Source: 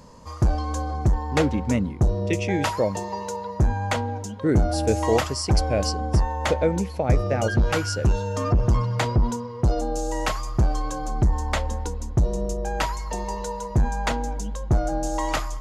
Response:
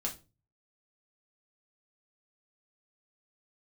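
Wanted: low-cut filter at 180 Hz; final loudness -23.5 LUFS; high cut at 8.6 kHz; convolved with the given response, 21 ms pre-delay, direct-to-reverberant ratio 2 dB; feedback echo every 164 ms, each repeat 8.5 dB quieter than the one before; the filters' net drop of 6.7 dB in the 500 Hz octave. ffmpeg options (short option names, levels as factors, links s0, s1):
-filter_complex "[0:a]highpass=180,lowpass=8600,equalizer=f=500:t=o:g=-8,aecho=1:1:164|328|492|656:0.376|0.143|0.0543|0.0206,asplit=2[s0][s1];[1:a]atrim=start_sample=2205,adelay=21[s2];[s1][s2]afir=irnorm=-1:irlink=0,volume=0.668[s3];[s0][s3]amix=inputs=2:normalize=0,volume=1.5"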